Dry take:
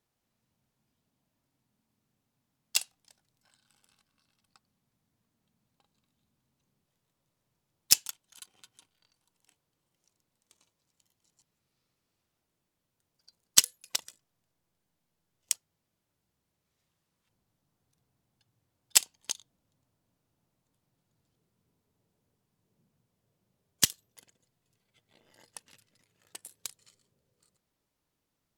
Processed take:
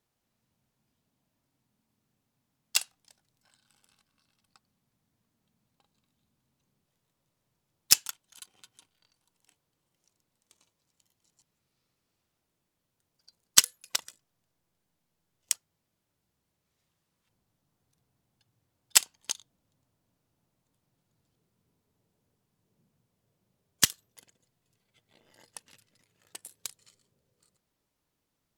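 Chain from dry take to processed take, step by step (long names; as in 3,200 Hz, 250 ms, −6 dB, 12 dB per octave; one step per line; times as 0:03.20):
dynamic equaliser 1,400 Hz, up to +6 dB, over −51 dBFS, Q 1.3
level +1 dB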